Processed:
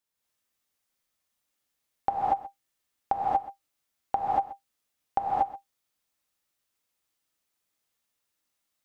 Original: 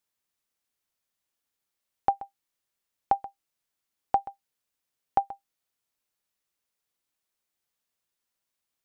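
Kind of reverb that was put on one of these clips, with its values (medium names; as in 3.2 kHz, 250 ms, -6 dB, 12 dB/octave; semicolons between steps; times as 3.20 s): gated-style reverb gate 260 ms rising, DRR -5.5 dB; trim -3 dB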